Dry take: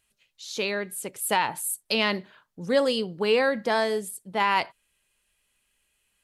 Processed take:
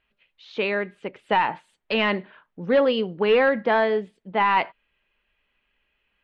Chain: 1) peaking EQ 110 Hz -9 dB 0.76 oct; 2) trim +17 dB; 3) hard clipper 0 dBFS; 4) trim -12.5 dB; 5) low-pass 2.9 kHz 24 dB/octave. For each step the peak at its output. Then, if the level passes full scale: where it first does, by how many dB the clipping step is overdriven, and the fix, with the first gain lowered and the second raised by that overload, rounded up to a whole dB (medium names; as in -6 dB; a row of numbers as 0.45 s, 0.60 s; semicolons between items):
-10.0 dBFS, +7.0 dBFS, 0.0 dBFS, -12.5 dBFS, -11.0 dBFS; step 2, 7.0 dB; step 2 +10 dB, step 4 -5.5 dB